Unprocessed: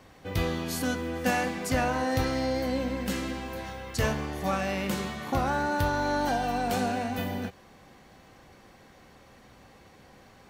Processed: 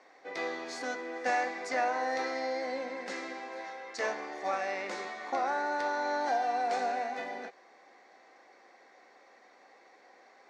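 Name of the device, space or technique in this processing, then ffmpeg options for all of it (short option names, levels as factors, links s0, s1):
phone speaker on a table: -af "highpass=f=340:w=0.5412,highpass=f=340:w=1.3066,equalizer=f=730:t=q:w=4:g=5,equalizer=f=2000:t=q:w=4:g=7,equalizer=f=3000:t=q:w=4:g=-10,lowpass=f=6400:w=0.5412,lowpass=f=6400:w=1.3066,volume=0.596"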